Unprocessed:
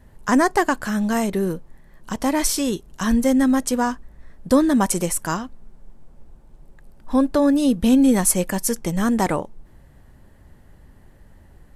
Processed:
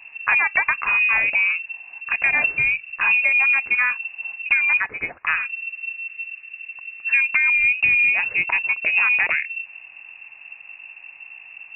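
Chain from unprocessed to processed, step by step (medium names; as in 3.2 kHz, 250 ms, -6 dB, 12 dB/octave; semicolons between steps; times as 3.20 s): 4.77–5.27 s: high-pass 860 Hz 6 dB/octave; compression 16:1, threshold -19 dBFS, peak gain reduction 10 dB; short-mantissa float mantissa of 4-bit; frequency inversion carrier 2.7 kHz; trim +4.5 dB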